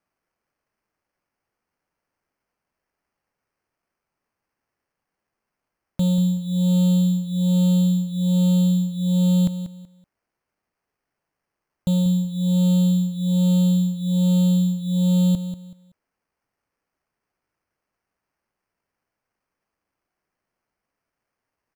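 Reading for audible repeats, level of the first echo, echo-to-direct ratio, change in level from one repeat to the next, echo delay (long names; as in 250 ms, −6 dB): 3, −11.0 dB, −10.5 dB, −11.5 dB, 189 ms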